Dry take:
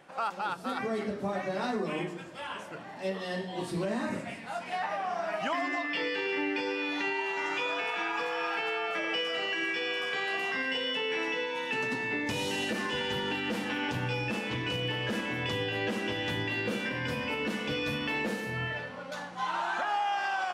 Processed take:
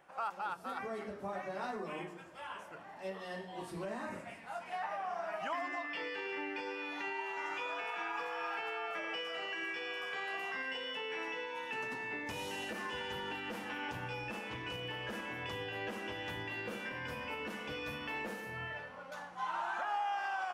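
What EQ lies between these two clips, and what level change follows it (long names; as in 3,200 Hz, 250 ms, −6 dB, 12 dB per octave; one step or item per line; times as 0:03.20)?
octave-band graphic EQ 125/250/500/2,000/4,000/8,000 Hz −8/−8/−4/−3/−8/−5 dB
−3.0 dB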